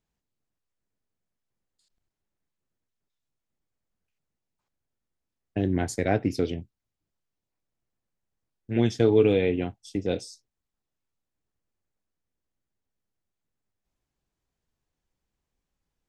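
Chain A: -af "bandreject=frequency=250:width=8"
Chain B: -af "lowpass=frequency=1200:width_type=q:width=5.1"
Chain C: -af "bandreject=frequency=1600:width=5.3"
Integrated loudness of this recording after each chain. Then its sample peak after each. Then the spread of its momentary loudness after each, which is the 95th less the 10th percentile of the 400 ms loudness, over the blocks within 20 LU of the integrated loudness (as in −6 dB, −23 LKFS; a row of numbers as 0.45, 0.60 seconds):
−26.0, −25.0, −26.0 LKFS; −8.5, −7.0, −9.0 dBFS; 13, 12, 13 LU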